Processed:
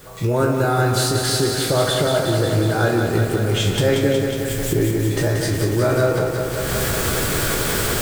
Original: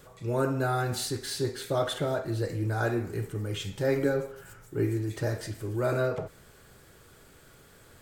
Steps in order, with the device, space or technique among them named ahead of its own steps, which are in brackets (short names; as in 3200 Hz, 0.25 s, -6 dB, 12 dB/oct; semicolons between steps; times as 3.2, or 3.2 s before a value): spectral trails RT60 0.31 s; 4.03–4.89 elliptic band-stop 690–1700 Hz; cheap recorder with automatic gain (white noise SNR 30 dB; recorder AGC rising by 40 dB/s); lo-fi delay 0.182 s, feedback 80%, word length 8-bit, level -5.5 dB; gain +7.5 dB